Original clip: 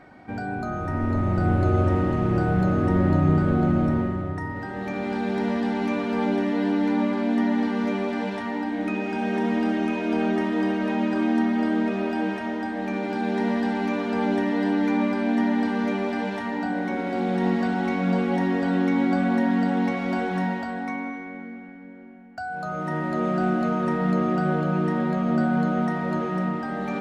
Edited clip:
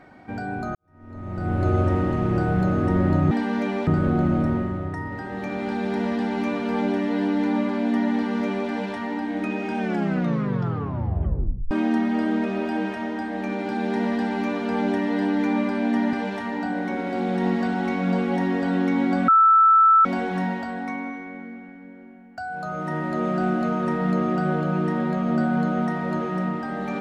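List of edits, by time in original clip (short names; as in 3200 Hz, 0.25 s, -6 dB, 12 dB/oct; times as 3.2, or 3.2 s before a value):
0.75–1.68 fade in quadratic
9.22 tape stop 1.93 s
15.57–16.13 move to 3.31
19.28–20.05 bleep 1320 Hz -11.5 dBFS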